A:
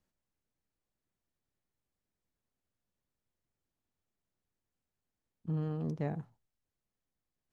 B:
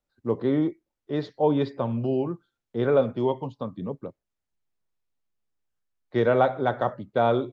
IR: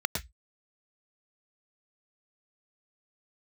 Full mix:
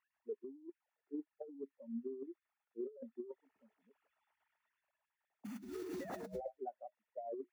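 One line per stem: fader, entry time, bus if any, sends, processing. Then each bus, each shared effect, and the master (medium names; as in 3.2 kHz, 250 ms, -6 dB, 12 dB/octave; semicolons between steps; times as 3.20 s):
2.86 s -9 dB -> 3.47 s -0.5 dB -> 4.53 s -0.5 dB -> 5.11 s -7.5 dB, 0.00 s, send -3 dB, formants replaced by sine waves; modulation noise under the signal 12 dB
-8.5 dB, 0.00 s, no send, steep high-pass 210 Hz 36 dB/octave; waveshaping leveller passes 2; spectral contrast expander 4:1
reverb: on, RT60 0.10 s, pre-delay 103 ms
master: peaking EQ 500 Hz -8 dB 0.35 oct; compressor with a negative ratio -47 dBFS, ratio -1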